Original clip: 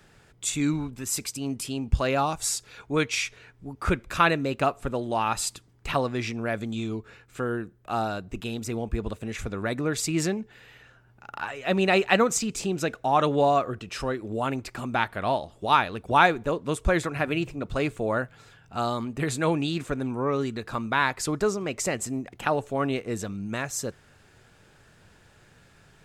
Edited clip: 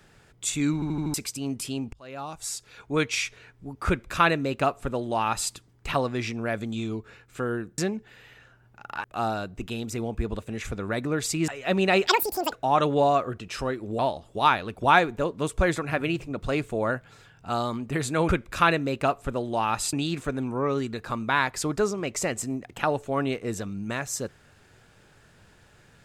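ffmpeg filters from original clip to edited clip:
-filter_complex "[0:a]asplit=15[a][b][c][d][e][f][g][h][i][j][k][l][m][n][o];[a]atrim=end=0.822[p];[b]atrim=start=0.738:end=0.822[q];[c]atrim=start=0.738:end=0.822[r];[d]atrim=start=0.738:end=0.822[s];[e]atrim=start=0.738:end=0.822[t];[f]atrim=start=1.138:end=1.93,asetpts=PTS-STARTPTS,afade=t=out:st=0.788:d=0.004:c=hsin[u];[g]atrim=start=1.93:end=7.782,asetpts=PTS-STARTPTS,afade=t=in:d=1.07[v];[h]atrim=start=10.218:end=11.482[w];[i]atrim=start=7.778:end=10.222[x];[j]atrim=start=11.478:end=12.074[y];[k]atrim=start=12.07:end=12.93,asetpts=PTS-STARTPTS,asetrate=84672,aresample=44100,atrim=end_sample=19753,asetpts=PTS-STARTPTS[z];[l]atrim=start=12.926:end=14.402[aa];[m]atrim=start=15.258:end=19.562[ab];[n]atrim=start=3.868:end=5.512[ac];[o]atrim=start=19.558[ad];[p][q]acrossfade=d=0.004:c1=hsin:c2=hsin[ae];[ae][r]acrossfade=d=0.004:c1=hsin:c2=hsin[af];[af][s]acrossfade=d=0.004:c1=hsin:c2=hsin[ag];[ag][t]acrossfade=d=0.004:c1=hsin:c2=hsin[ah];[u][v]concat=n=2:v=0:a=1[ai];[ah][ai]acrossfade=d=0.004:c1=hsin:c2=hsin[aj];[aj][w]acrossfade=d=0.004:c1=hsin:c2=hsin[ak];[ak][x]acrossfade=d=0.004:c1=hsin:c2=hsin[al];[al][y]acrossfade=d=0.004:c1=hsin:c2=hsin[am];[am][z]acrossfade=d=0.004:c1=hsin:c2=hsin[an];[an][aa]acrossfade=d=0.004:c1=hsin:c2=hsin[ao];[ao][ab]acrossfade=d=0.004:c1=hsin:c2=hsin[ap];[ap][ac]acrossfade=d=0.004:c1=hsin:c2=hsin[aq];[aq][ad]acrossfade=d=0.004:c1=hsin:c2=hsin"

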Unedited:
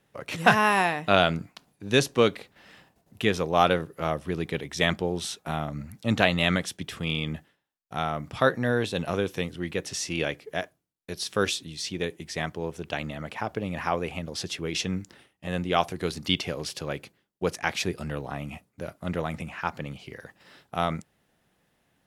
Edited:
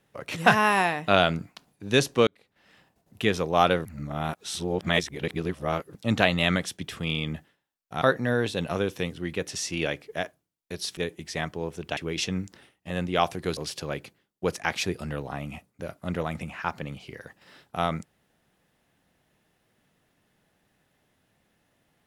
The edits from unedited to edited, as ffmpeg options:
-filter_complex "[0:a]asplit=8[a][b][c][d][e][f][g][h];[a]atrim=end=2.27,asetpts=PTS-STARTPTS,afade=t=out:st=2.266:d=0.004:c=hsin[i];[b]atrim=start=2.27:end=3.852,asetpts=PTS-STARTPTS,afade=t=in:d=0.97[j];[c]atrim=start=3.848:end=5.952,asetpts=PTS-STARTPTS,areverse[k];[d]atrim=start=5.948:end=8.022[l];[e]atrim=start=8.398:end=11.352[m];[f]atrim=start=11.978:end=12.982[n];[g]atrim=start=14.538:end=16.142[o];[h]atrim=start=16.558[p];[i][j]concat=n=2:v=0:a=1[q];[q][k]acrossfade=d=0.004:c1=hsin:c2=hsin[r];[r][l]acrossfade=d=0.004:c1=hsin:c2=hsin[s];[s][m]acrossfade=d=0.004:c1=hsin:c2=hsin[t];[t][n]acrossfade=d=0.004:c1=hsin:c2=hsin[u];[u][o]acrossfade=d=0.004:c1=hsin:c2=hsin[v];[v][p]acrossfade=d=0.004:c1=hsin:c2=hsin"

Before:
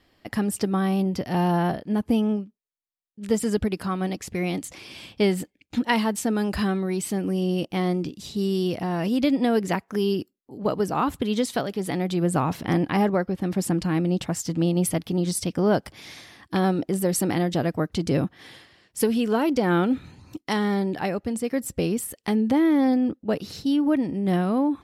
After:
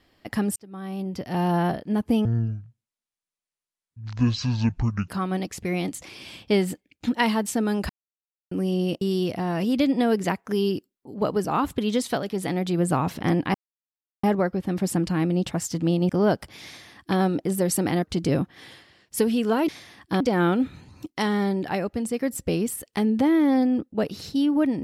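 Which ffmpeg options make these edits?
-filter_complex "[0:a]asplit=12[a][b][c][d][e][f][g][h][i][j][k][l];[a]atrim=end=0.56,asetpts=PTS-STARTPTS,afade=t=out:st=0.556:d=0.004:c=hsin[m];[b]atrim=start=0.56:end=2.254,asetpts=PTS-STARTPTS,afade=t=in:d=1.03[n];[c]atrim=start=2.25:end=3.78,asetpts=PTS-STARTPTS,asetrate=23814,aresample=44100[o];[d]atrim=start=3.776:end=6.59,asetpts=PTS-STARTPTS,afade=t=out:st=2.81:d=0.004:c=hsin[p];[e]atrim=start=6.59:end=7.21,asetpts=PTS-STARTPTS,volume=0[q];[f]atrim=start=7.21:end=7.712,asetpts=PTS-STARTPTS,afade=t=in:d=0.004:c=hsin[r];[g]atrim=start=8.448:end=12.98,asetpts=PTS-STARTPTS,afade=t=out:st=4.528:d=0.004:c=hsin,apad=pad_dur=0.69[s];[h]atrim=start=12.98:end=14.842,asetpts=PTS-STARTPTS,afade=t=in:d=0.004:c=hsin[t];[i]atrim=start=15.528:end=17.462[u];[j]atrim=start=17.848:end=19.512[v];[k]atrim=start=16.098:end=16.622[w];[l]atrim=start=19.508[x];[m][n]concat=n=2:v=0:a=1[y];[y][o]acrossfade=d=0.004:c1=hsin:c2=hsin[z];[p][q][r]concat=n=3:v=0:a=1[aa];[z][aa]acrossfade=d=0.004:c1=hsin:c2=hsin[ab];[s][t]concat=n=2:v=0:a=1[ac];[ab][ac]acrossfade=d=0.004:c1=hsin:c2=hsin[ad];[ad][u]acrossfade=d=0.004:c1=hsin:c2=hsin[ae];[ae][v]acrossfade=d=0.004:c1=hsin:c2=hsin[af];[af][w]acrossfade=d=0.004:c1=hsin:c2=hsin[ag];[ag][x]acrossfade=d=0.004:c1=hsin:c2=hsin"

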